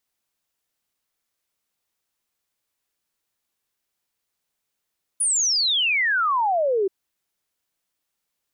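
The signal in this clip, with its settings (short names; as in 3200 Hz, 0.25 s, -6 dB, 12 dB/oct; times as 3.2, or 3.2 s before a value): log sweep 10000 Hz -> 370 Hz 1.68 s -18 dBFS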